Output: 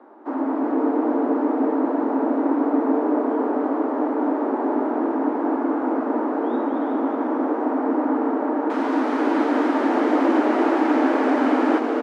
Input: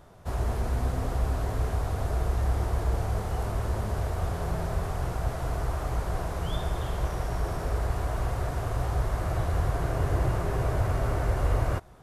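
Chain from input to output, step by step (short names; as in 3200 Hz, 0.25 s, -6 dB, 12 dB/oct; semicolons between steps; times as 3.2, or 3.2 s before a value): LPF 1000 Hz 12 dB/oct, from 8.7 s 3500 Hz; frequency-shifting echo 0.225 s, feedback 48%, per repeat -150 Hz, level -5.5 dB; frequency shift +210 Hz; HPF 300 Hz 24 dB/oct; echo 0.373 s -7.5 dB; gain +7.5 dB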